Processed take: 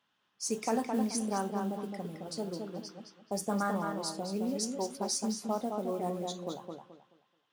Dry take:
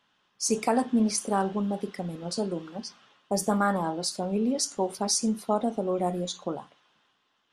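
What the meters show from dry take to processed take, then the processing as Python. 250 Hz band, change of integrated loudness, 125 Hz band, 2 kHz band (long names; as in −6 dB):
−6.0 dB, −6.5 dB, −6.0 dB, −6.5 dB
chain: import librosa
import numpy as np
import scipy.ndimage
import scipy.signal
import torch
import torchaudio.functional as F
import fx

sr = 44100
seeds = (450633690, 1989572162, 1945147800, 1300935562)

p1 = scipy.signal.sosfilt(scipy.signal.butter(2, 62.0, 'highpass', fs=sr, output='sos'), x)
p2 = fx.mod_noise(p1, sr, seeds[0], snr_db=26)
p3 = p2 + fx.echo_filtered(p2, sr, ms=215, feedback_pct=27, hz=4900.0, wet_db=-4.5, dry=0)
y = p3 * 10.0 ** (-7.5 / 20.0)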